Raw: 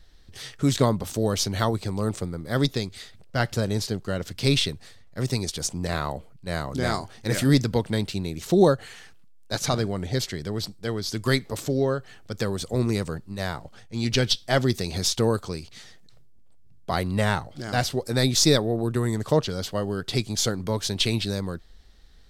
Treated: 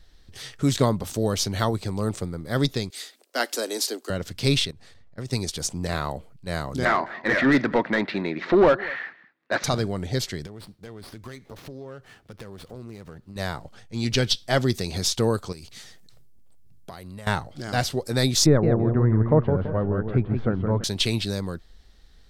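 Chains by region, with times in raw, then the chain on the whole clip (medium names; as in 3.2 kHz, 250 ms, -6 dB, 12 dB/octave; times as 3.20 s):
2.90–4.10 s: steep high-pass 250 Hz 72 dB/octave + treble shelf 5.4 kHz +11.5 dB
4.65–5.33 s: treble shelf 12 kHz -10.5 dB + level held to a coarse grid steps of 16 dB + tape noise reduction on one side only decoder only
6.85–9.64 s: cabinet simulation 230–3500 Hz, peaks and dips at 450 Hz -7 dB, 800 Hz -4 dB, 1.9 kHz +8 dB, 3 kHz -9 dB + overdrive pedal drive 23 dB, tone 1.2 kHz, clips at -7.5 dBFS + delay 208 ms -21.5 dB
10.46–13.36 s: compression 4:1, threshold -38 dBFS + sliding maximum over 5 samples
15.52–17.27 s: treble shelf 8.5 kHz +10 dB + compression 12:1, threshold -35 dBFS
18.46–20.84 s: low-pass 1.7 kHz 24 dB/octave + bass shelf 180 Hz +7.5 dB + modulated delay 166 ms, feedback 32%, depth 148 cents, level -6 dB
whole clip: none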